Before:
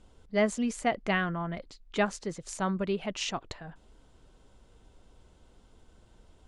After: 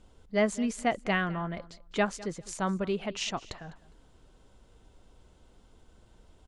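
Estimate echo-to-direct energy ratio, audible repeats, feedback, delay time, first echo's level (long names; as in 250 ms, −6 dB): −20.0 dB, 2, 18%, 204 ms, −20.0 dB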